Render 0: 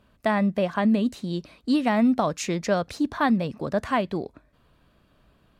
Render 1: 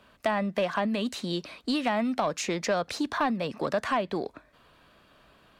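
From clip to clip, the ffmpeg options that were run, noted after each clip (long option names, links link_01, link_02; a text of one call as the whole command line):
ffmpeg -i in.wav -filter_complex "[0:a]acrossover=split=140|920[link_01][link_02][link_03];[link_01]acompressor=threshold=-47dB:ratio=4[link_04];[link_02]acompressor=threshold=-28dB:ratio=4[link_05];[link_03]acompressor=threshold=-38dB:ratio=4[link_06];[link_04][link_05][link_06]amix=inputs=3:normalize=0,asplit=2[link_07][link_08];[link_08]highpass=frequency=720:poles=1,volume=13dB,asoftclip=type=tanh:threshold=-14.5dB[link_09];[link_07][link_09]amix=inputs=2:normalize=0,lowpass=frequency=7000:poles=1,volume=-6dB" out.wav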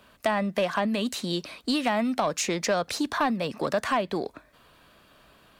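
ffmpeg -i in.wav -af "highshelf=frequency=7400:gain=9.5,volume=1.5dB" out.wav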